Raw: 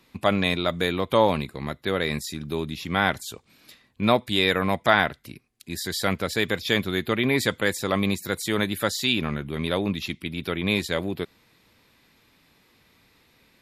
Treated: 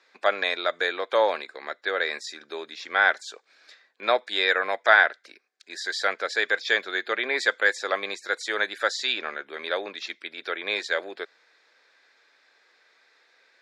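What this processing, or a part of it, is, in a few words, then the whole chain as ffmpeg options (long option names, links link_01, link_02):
phone speaker on a table: -af "highpass=frequency=460:width=0.5412,highpass=frequency=460:width=1.3066,equalizer=frequency=1000:width_type=q:width=4:gain=-5,equalizer=frequency=1600:width_type=q:width=4:gain=9,equalizer=frequency=2900:width_type=q:width=4:gain=-7,lowpass=frequency=6500:width=0.5412,lowpass=frequency=6500:width=1.3066"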